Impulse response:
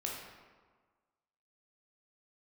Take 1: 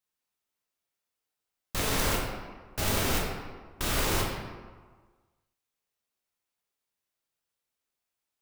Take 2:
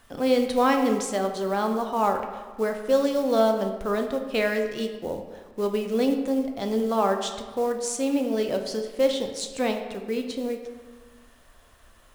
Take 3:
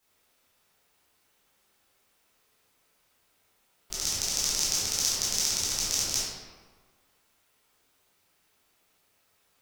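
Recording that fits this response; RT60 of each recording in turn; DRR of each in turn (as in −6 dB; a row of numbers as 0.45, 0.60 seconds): 1; 1.5, 1.5, 1.5 seconds; −2.5, 4.5, −9.5 decibels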